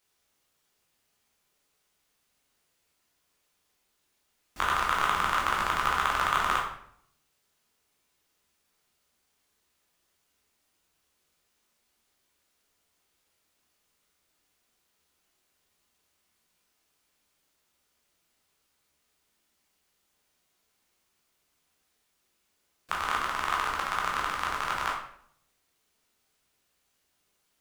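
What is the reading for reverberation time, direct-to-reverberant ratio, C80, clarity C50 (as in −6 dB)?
0.65 s, −2.5 dB, 8.0 dB, 4.0 dB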